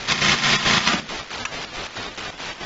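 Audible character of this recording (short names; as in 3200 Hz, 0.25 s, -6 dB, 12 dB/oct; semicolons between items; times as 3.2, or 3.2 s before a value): a quantiser's noise floor 6-bit, dither triangular; chopped level 4.6 Hz, depth 60%, duty 60%; aliases and images of a low sample rate 8400 Hz, jitter 0%; AAC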